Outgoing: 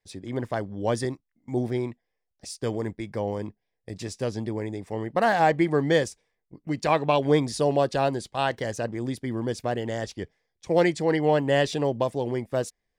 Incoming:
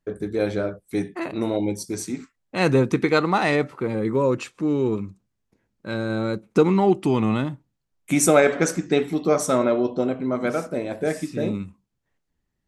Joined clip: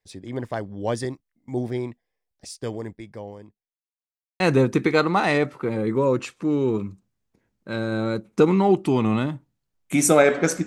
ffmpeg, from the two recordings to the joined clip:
ffmpeg -i cue0.wav -i cue1.wav -filter_complex "[0:a]apad=whole_dur=10.66,atrim=end=10.66,asplit=2[link_01][link_02];[link_01]atrim=end=3.76,asetpts=PTS-STARTPTS,afade=type=out:start_time=2.45:duration=1.31[link_03];[link_02]atrim=start=3.76:end=4.4,asetpts=PTS-STARTPTS,volume=0[link_04];[1:a]atrim=start=2.58:end=8.84,asetpts=PTS-STARTPTS,afade=type=in:duration=0.004:curve=hsin[link_05];[link_03][link_04][link_05]concat=n=3:v=0:a=1" out.wav

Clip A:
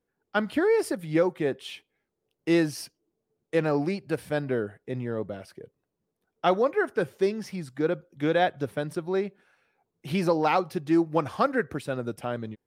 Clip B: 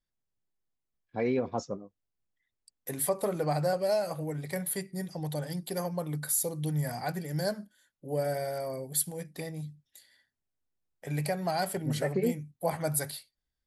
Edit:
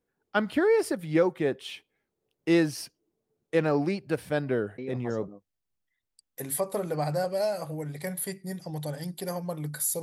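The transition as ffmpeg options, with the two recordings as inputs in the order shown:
ffmpeg -i cue0.wav -i cue1.wav -filter_complex "[1:a]asplit=2[link_01][link_02];[0:a]apad=whole_dur=10.02,atrim=end=10.02,atrim=end=5.282[link_03];[link_02]atrim=start=1.768:end=6.51[link_04];[link_01]atrim=start=1.27:end=1.77,asetpts=PTS-STARTPTS,volume=-9dB,afade=type=in:duration=0.004:curve=hsin,afade=type=out:start_time=0.496:duration=0.004:curve=hsin,adelay=4780[link_05];[link_03][link_04]acrossfade=duration=0.004:curve1=hsin:curve2=hsin[link_06];[link_06][link_05]amix=inputs=2:normalize=0" out.wav

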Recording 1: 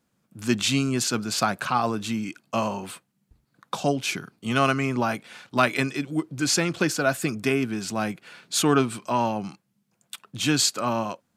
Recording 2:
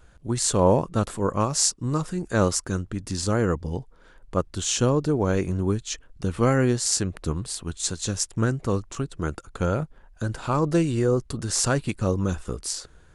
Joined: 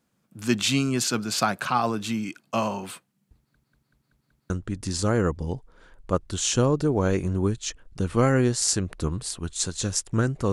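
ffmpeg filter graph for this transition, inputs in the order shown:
ffmpeg -i cue0.wav -i cue1.wav -filter_complex "[0:a]apad=whole_dur=10.52,atrim=end=10.52,asplit=6[link_01][link_02][link_03][link_04][link_05][link_06];[link_01]atrim=end=3.552[link_07];[link_02]atrim=start=3.358:end=3.552[link_08];[link_03]atrim=start=3.358:end=3.552[link_09];[link_04]atrim=start=3.358:end=3.552[link_10];[link_05]atrim=start=3.358:end=3.552[link_11];[link_06]atrim=start=3.358:end=3.552[link_12];[1:a]atrim=start=2.738:end=8.76[link_13];[link_07][link_08]acrossfade=duration=0.004:curve1=hsin:curve2=hsin[link_14];[link_14][link_09]acrossfade=duration=0.004:curve1=hsin:curve2=hsin[link_15];[link_15][link_10]acrossfade=duration=0.004:curve1=hsin:curve2=hsin[link_16];[link_16][link_11]acrossfade=duration=0.004:curve1=hsin:curve2=hsin[link_17];[link_17][link_12]acrossfade=duration=0.004:curve1=hsin:curve2=hsin[link_18];[link_18][link_13]acrossfade=duration=0.004:curve1=hsin:curve2=hsin" out.wav

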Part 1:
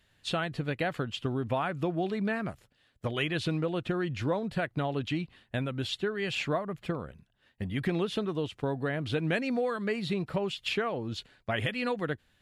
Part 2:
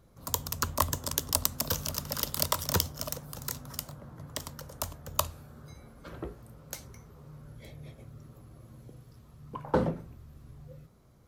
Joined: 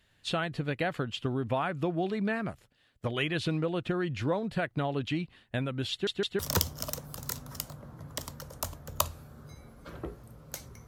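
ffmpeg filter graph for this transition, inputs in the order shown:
ffmpeg -i cue0.wav -i cue1.wav -filter_complex "[0:a]apad=whole_dur=10.87,atrim=end=10.87,asplit=3[link_01][link_02][link_03];[link_01]atrim=end=6.072[link_04];[link_02]atrim=start=5.908:end=6.072[link_05];[link_03]atrim=start=5.908:end=6.072[link_06];[1:a]atrim=start=2.578:end=7.06[link_07];[link_04][link_05]acrossfade=duration=0.004:curve1=hsin:curve2=hsin[link_08];[link_08][link_06]acrossfade=duration=0.004:curve1=hsin:curve2=hsin[link_09];[link_09][link_07]acrossfade=duration=0.004:curve1=hsin:curve2=hsin" out.wav

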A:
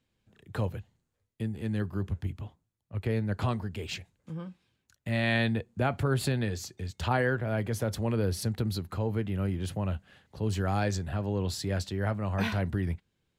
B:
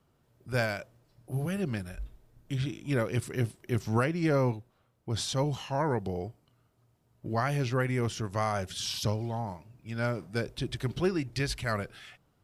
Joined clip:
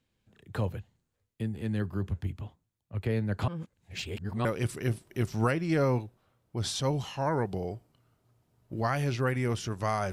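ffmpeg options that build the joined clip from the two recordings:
ffmpeg -i cue0.wav -i cue1.wav -filter_complex "[0:a]apad=whole_dur=10.12,atrim=end=10.12,asplit=2[link_01][link_02];[link_01]atrim=end=3.482[link_03];[link_02]atrim=start=3.478:end=4.452,asetpts=PTS-STARTPTS,areverse[link_04];[1:a]atrim=start=2.978:end=8.65[link_05];[link_03][link_04]acrossfade=duration=0.004:curve1=hsin:curve2=hsin[link_06];[link_06][link_05]acrossfade=duration=0.004:curve1=hsin:curve2=hsin" out.wav

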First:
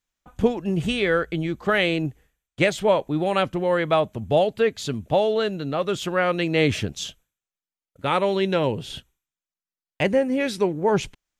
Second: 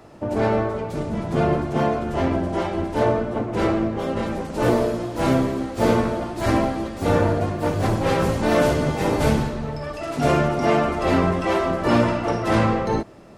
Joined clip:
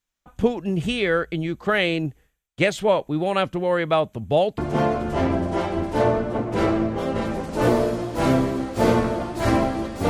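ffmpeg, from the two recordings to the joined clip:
ffmpeg -i cue0.wav -i cue1.wav -filter_complex "[0:a]apad=whole_dur=10.09,atrim=end=10.09,atrim=end=4.582[link_01];[1:a]atrim=start=1.588:end=7.1[link_02];[link_01][link_02]acrossfade=duration=0.004:curve1=hsin:curve2=hsin" out.wav

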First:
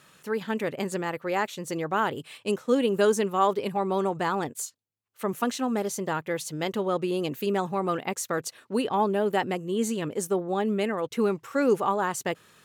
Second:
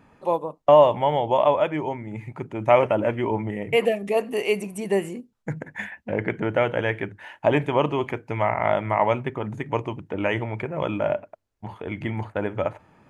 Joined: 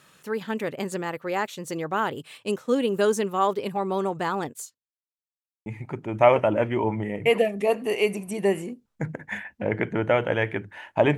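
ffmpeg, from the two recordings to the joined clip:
ffmpeg -i cue0.wav -i cue1.wav -filter_complex "[0:a]apad=whole_dur=11.17,atrim=end=11.17,asplit=2[link_01][link_02];[link_01]atrim=end=4.89,asetpts=PTS-STARTPTS,afade=type=out:start_time=4.46:duration=0.43[link_03];[link_02]atrim=start=4.89:end=5.66,asetpts=PTS-STARTPTS,volume=0[link_04];[1:a]atrim=start=2.13:end=7.64,asetpts=PTS-STARTPTS,afade=type=in:duration=0.004:curve=hsin[link_05];[link_03][link_04][link_05]concat=n=3:v=0:a=1" out.wav

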